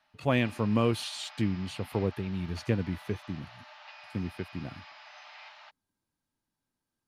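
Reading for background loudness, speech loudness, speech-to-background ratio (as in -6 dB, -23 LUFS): -49.0 LUFS, -32.0 LUFS, 17.0 dB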